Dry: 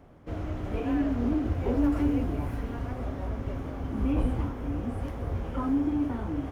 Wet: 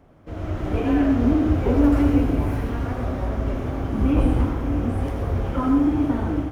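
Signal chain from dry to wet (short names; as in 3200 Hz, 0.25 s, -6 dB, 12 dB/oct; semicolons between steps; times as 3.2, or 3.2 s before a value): on a send at -4 dB: reverb RT60 0.60 s, pre-delay 74 ms; on the sum: AGC gain up to 7 dB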